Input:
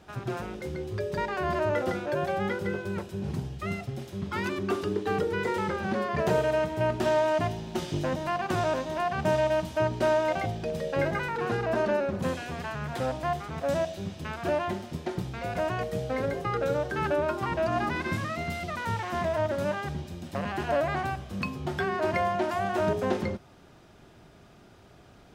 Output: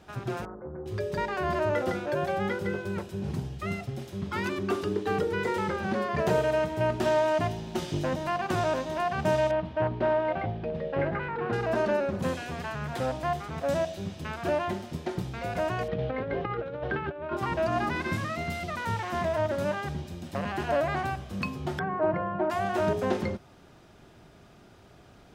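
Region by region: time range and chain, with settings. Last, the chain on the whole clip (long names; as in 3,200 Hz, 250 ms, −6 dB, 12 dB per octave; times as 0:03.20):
0:00.45–0:00.86: Butterworth low-pass 1,300 Hz 48 dB per octave + tilt shelving filter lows −6 dB, about 880 Hz + highs frequency-modulated by the lows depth 0.21 ms
0:09.51–0:11.53: high-frequency loss of the air 370 metres + highs frequency-modulated by the lows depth 0.13 ms
0:15.88–0:17.37: low-pass filter 3,400 Hz 24 dB per octave + compressor whose output falls as the input rises −31 dBFS, ratio −0.5
0:21.79–0:22.50: low-pass filter 1,100 Hz + comb filter 6.4 ms, depth 62%
whole clip: no processing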